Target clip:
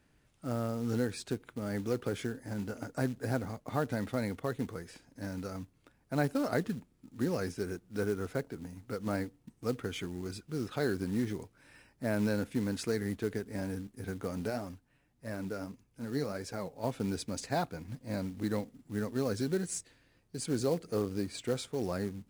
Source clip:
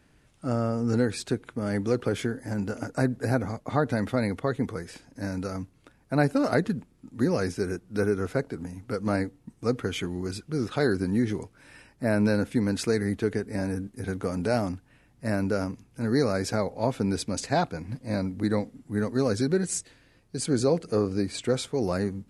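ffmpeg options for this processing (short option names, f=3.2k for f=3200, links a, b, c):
-filter_complex "[0:a]acrusher=bits=5:mode=log:mix=0:aa=0.000001,asplit=3[a][b][c];[a]afade=t=out:st=14.49:d=0.02[d];[b]flanger=delay=1.7:depth=5.5:regen=55:speed=1.7:shape=sinusoidal,afade=t=in:st=14.49:d=0.02,afade=t=out:st=16.83:d=0.02[e];[c]afade=t=in:st=16.83:d=0.02[f];[d][e][f]amix=inputs=3:normalize=0,volume=-7.5dB"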